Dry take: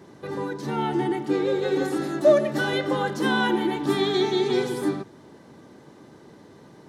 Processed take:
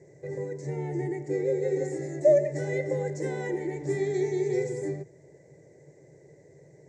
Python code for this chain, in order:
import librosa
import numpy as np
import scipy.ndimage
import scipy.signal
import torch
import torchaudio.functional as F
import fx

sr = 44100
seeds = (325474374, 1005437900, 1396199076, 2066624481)

y = fx.curve_eq(x, sr, hz=(100.0, 150.0, 220.0, 400.0, 570.0, 1300.0, 2000.0, 3100.0, 7400.0, 11000.0), db=(0, 7, -17, 3, 5, -28, 4, -26, 8, -25))
y = y * librosa.db_to_amplitude(-5.5)